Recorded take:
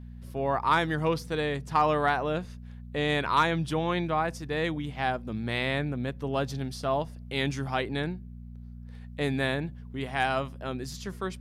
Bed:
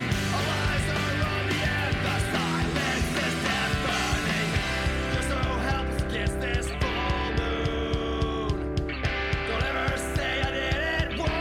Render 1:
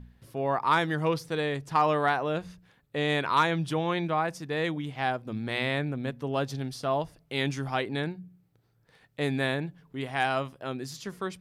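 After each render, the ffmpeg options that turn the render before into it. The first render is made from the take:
-af "bandreject=f=60:t=h:w=4,bandreject=f=120:t=h:w=4,bandreject=f=180:t=h:w=4,bandreject=f=240:t=h:w=4"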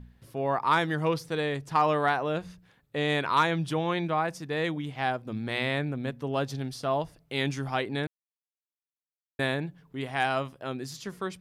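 -filter_complex "[0:a]asplit=3[s0][s1][s2];[s0]atrim=end=8.07,asetpts=PTS-STARTPTS,afade=t=out:st=8.066:d=0.004:c=hsin[s3];[s1]atrim=start=8.07:end=9.39,asetpts=PTS-STARTPTS,volume=0[s4];[s2]atrim=start=9.39,asetpts=PTS-STARTPTS,afade=t=in:d=0.004:c=hsin[s5];[s3][s4][s5]concat=n=3:v=0:a=1"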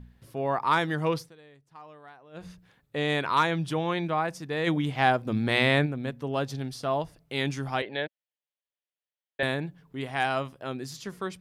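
-filter_complex "[0:a]asplit=3[s0][s1][s2];[s0]afade=t=out:st=4.66:d=0.02[s3];[s1]acontrast=65,afade=t=in:st=4.66:d=0.02,afade=t=out:st=5.85:d=0.02[s4];[s2]afade=t=in:st=5.85:d=0.02[s5];[s3][s4][s5]amix=inputs=3:normalize=0,asettb=1/sr,asplit=3[s6][s7][s8];[s6]atrim=end=7.824[s9];[s7]atrim=start=7.82:end=9.43,asetpts=PTS-STARTPTS,afade=t=in:d=0.004:c=qsin,afade=t=out:st=1.606:d=0.004:c=qsin,highpass=240,equalizer=f=260:t=q:w=4:g=-9,equalizer=f=370:t=q:w=4:g=-4,equalizer=f=570:t=q:w=4:g=8,equalizer=f=1200:t=q:w=4:g=-8,equalizer=f=1800:t=q:w=4:g=5,equalizer=f=3100:t=q:w=4:g=6,lowpass=f=4100:w=0.5412,lowpass=f=4100:w=1.3066[s10];[s8]atrim=start=9.426[s11];[s9][s10]acrossfade=d=0.004:c1=hsin:c2=qsin[s12];[s12][s11]acrossfade=d=0.004:c1=qsin:c2=hsin,asplit=3[s13][s14][s15];[s13]atrim=end=1.35,asetpts=PTS-STARTPTS,afade=t=out:st=1.21:d=0.14:c=qua:silence=0.0630957[s16];[s14]atrim=start=1.35:end=2.3,asetpts=PTS-STARTPTS,volume=0.0631[s17];[s15]atrim=start=2.3,asetpts=PTS-STARTPTS,afade=t=in:d=0.14:c=qua:silence=0.0630957[s18];[s16][s17][s18]concat=n=3:v=0:a=1"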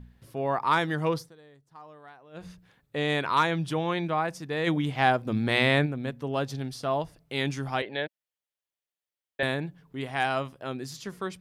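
-filter_complex "[0:a]asettb=1/sr,asplit=3[s0][s1][s2];[s0]atrim=end=1.094[s3];[s1]atrim=start=1.09:end=1.97,asetpts=PTS-STARTPTS,afade=t=in:d=0.004:c=qsin,afade=t=out:st=0.876:d=0.004:c=qsin,equalizer=f=2500:t=o:w=0.61:g=-7[s4];[s2]atrim=start=1.966[s5];[s3][s4]acrossfade=d=0.004:c1=hsin:c2=qsin[s6];[s6][s5]acrossfade=d=0.004:c1=qsin:c2=hsin"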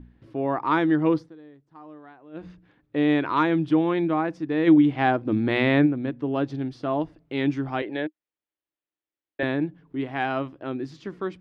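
-af "lowpass=2800,equalizer=f=310:w=3.4:g=15"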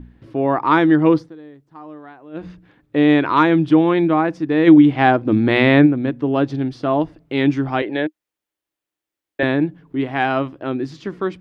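-af "volume=2.37,alimiter=limit=0.891:level=0:latency=1"

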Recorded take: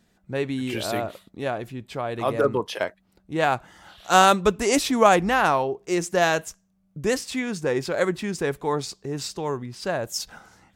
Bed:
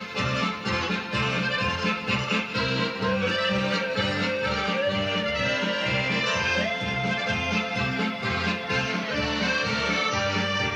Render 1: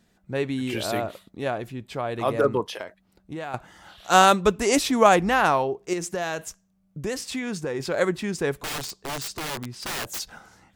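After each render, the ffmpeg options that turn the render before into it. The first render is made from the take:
-filter_complex "[0:a]asettb=1/sr,asplit=3[s0][s1][s2];[s0]atrim=end=2.654[s3];[s1]atrim=start=2.65:end=3.54,asetpts=PTS-STARTPTS,afade=t=in:d=0.004:c=qsin,afade=t=out:st=0.886:d=0.004:c=qsin,acompressor=threshold=0.0316:ratio=6:attack=3.2:release=140:knee=1:detection=peak[s4];[s2]atrim=start=3.536[s5];[s3][s4]acrossfade=d=0.004:c1=hsin:c2=qsin[s6];[s6][s5]acrossfade=d=0.004:c1=qsin:c2=hsin,asettb=1/sr,asplit=3[s7][s8][s9];[s7]atrim=end=5.934[s10];[s8]atrim=start=5.93:end=7.8,asetpts=PTS-STARTPTS,afade=t=in:d=0.004:c=qsin,afade=t=out:st=1.866:d=0.004:c=qsin,acompressor=threshold=0.0562:ratio=4:attack=3.2:release=140:knee=1:detection=peak[s11];[s9]atrim=start=7.796[s12];[s10][s11]acrossfade=d=0.004:c1=hsin:c2=qsin[s13];[s13][s12]acrossfade=d=0.004:c1=qsin:c2=hsin,asettb=1/sr,asplit=3[s14][s15][s16];[s14]atrim=end=8.534[s17];[s15]atrim=start=8.53:end=10.2,asetpts=PTS-STARTPTS,afade=t=in:d=0.004:c=qsin,afade=t=out:st=1.666:d=0.004:c=qsin,aeval=exprs='(mod(18.8*val(0)+1,2)-1)/18.8':c=same[s18];[s16]atrim=start=10.196[s19];[s17][s18]acrossfade=d=0.004:c1=hsin:c2=qsin[s20];[s20][s19]acrossfade=d=0.004:c1=qsin:c2=hsin"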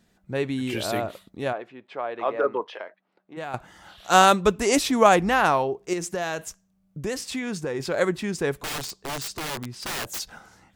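-filter_complex "[0:a]asplit=3[s0][s1][s2];[s0]afade=t=out:st=1.52:d=0.02[s3];[s1]highpass=430,lowpass=2400,afade=t=in:st=1.52:d=0.02,afade=t=out:st=3.36:d=0.02[s4];[s2]afade=t=in:st=3.36:d=0.02[s5];[s3][s4][s5]amix=inputs=3:normalize=0"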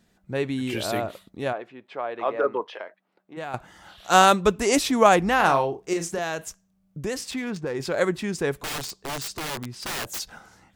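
-filter_complex "[0:a]asettb=1/sr,asplit=3[s0][s1][s2];[s0]atrim=end=5.364[s3];[s1]atrim=start=5.36:end=6.19,asetpts=PTS-STARTPTS,afade=t=in:d=0.004:c=qsin,afade=t=out:st=0.826:d=0.004:c=qsin,asplit=2[s4][s5];[s5]adelay=36,volume=0.447[s6];[s4][s6]amix=inputs=2:normalize=0,atrim=end_sample=36603[s7];[s2]atrim=start=6.186[s8];[s3][s7]acrossfade=d=0.004:c1=hsin:c2=qsin[s9];[s9][s8]acrossfade=d=0.004:c1=qsin:c2=hsin,asettb=1/sr,asplit=3[s10][s11][s12];[s10]atrim=end=7.314[s13];[s11]atrim=start=7.31:end=7.75,asetpts=PTS-STARTPTS,afade=t=in:d=0.004:c=qsin,afade=t=out:st=0.436:d=0.004:c=qsin,adynamicsmooth=sensitivity=8:basefreq=2000[s14];[s12]atrim=start=7.746[s15];[s13][s14]acrossfade=d=0.004:c1=hsin:c2=qsin[s16];[s16][s15]acrossfade=d=0.004:c1=qsin:c2=hsin"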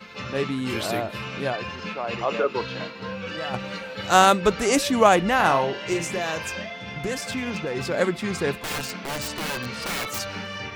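-filter_complex "[1:a]volume=0.398[s0];[0:a][s0]amix=inputs=2:normalize=0"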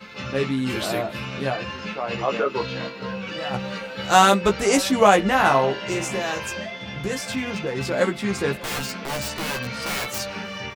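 -filter_complex "[0:a]asplit=2[s0][s1];[s1]adelay=15,volume=0.631[s2];[s0][s2]amix=inputs=2:normalize=0,asplit=2[s3][s4];[s4]adelay=583.1,volume=0.0794,highshelf=f=4000:g=-13.1[s5];[s3][s5]amix=inputs=2:normalize=0"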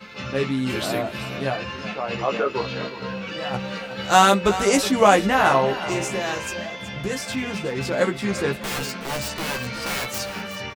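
-af "aecho=1:1:370:0.211"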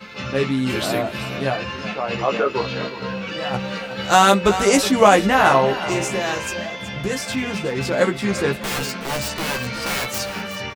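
-af "volume=1.41,alimiter=limit=0.891:level=0:latency=1"

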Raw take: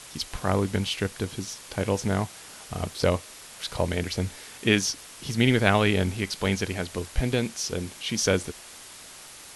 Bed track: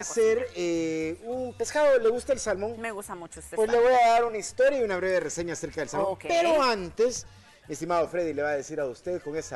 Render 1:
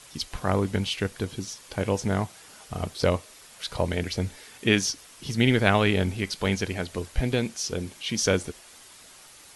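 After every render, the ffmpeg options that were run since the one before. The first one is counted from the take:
-af "afftdn=nr=6:nf=-45"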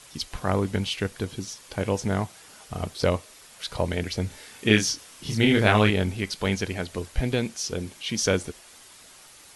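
-filter_complex "[0:a]asettb=1/sr,asplit=3[s0][s1][s2];[s0]atrim=end=4.284[s3];[s1]atrim=start=4.28:end=5.9,asetpts=PTS-STARTPTS,afade=t=in:d=0.004:c=qsin,afade=t=out:st=1.616:d=0.004:c=qsin,asplit=2[s4][s5];[s5]adelay=28,volume=0.708[s6];[s4][s6]amix=inputs=2:normalize=0,atrim=end_sample=71442[s7];[s2]atrim=start=5.896[s8];[s3][s7]acrossfade=d=0.004:c1=hsin:c2=qsin[s9];[s9][s8]acrossfade=d=0.004:c1=qsin:c2=hsin"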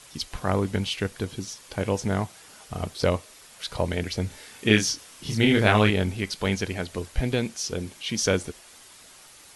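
-af anull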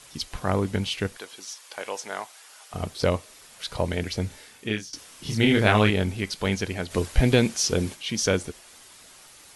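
-filter_complex "[0:a]asettb=1/sr,asplit=3[s0][s1][s2];[s0]atrim=end=1.174[s3];[s1]atrim=start=1.17:end=2.74,asetpts=PTS-STARTPTS,afade=t=in:d=0.004:c=qsin,afade=t=out:st=1.566:d=0.004:c=qsin,highpass=710[s4];[s2]atrim=start=2.736[s5];[s3][s4]acrossfade=d=0.004:c1=hsin:c2=qsin[s6];[s6][s5]acrossfade=d=0.004:c1=qsin:c2=hsin,asplit=3[s7][s8][s9];[s7]afade=t=out:st=6.9:d=0.02[s10];[s8]acontrast=65,afade=t=in:st=6.9:d=0.02,afade=t=out:st=7.94:d=0.02[s11];[s9]afade=t=in:st=7.94:d=0.02[s12];[s10][s11][s12]amix=inputs=3:normalize=0,asplit=2[s13][s14];[s13]atrim=end=4.93,asetpts=PTS-STARTPTS,afade=t=out:st=4.24:d=0.69:silence=0.0794328[s15];[s14]atrim=start=4.93,asetpts=PTS-STARTPTS,afade=t=in:d=0.004:c=hsin:silence=0.0794328[s16];[s15][s16]concat=n=2:v=0:a=1"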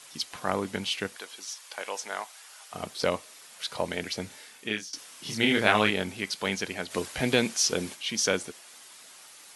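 -af "highpass=240,equalizer=f=380:t=o:w=1.6:g=-4.5"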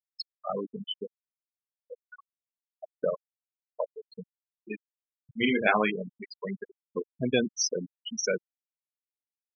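-af "afftfilt=real='re*gte(hypot(re,im),0.158)':imag='im*gte(hypot(re,im),0.158)':win_size=1024:overlap=0.75"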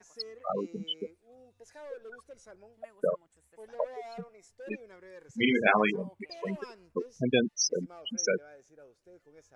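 -filter_complex "[1:a]volume=0.0596[s0];[0:a][s0]amix=inputs=2:normalize=0"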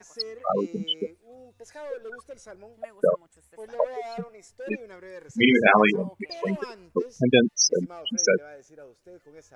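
-af "volume=2.37,alimiter=limit=0.794:level=0:latency=1"

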